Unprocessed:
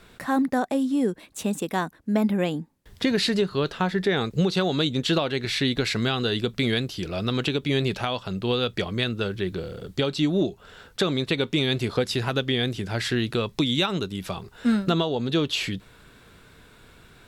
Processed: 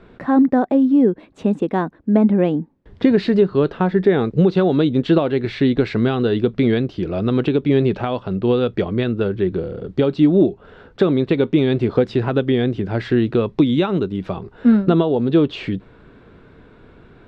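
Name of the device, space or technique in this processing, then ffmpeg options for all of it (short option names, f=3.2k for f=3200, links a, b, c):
phone in a pocket: -af "lowpass=3.6k,equalizer=f=330:t=o:w=1.6:g=5.5,highshelf=f=2k:g=-12,volume=5dB"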